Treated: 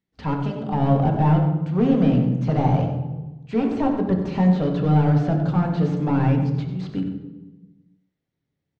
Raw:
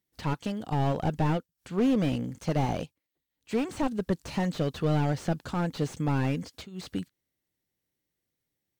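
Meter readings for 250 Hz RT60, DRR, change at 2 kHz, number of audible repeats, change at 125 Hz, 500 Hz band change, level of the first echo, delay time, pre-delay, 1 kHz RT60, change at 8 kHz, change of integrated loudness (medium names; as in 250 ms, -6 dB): 1.6 s, 1.5 dB, +2.0 dB, 1, +10.5 dB, +6.5 dB, -11.5 dB, 92 ms, 3 ms, 1.0 s, under -10 dB, +8.5 dB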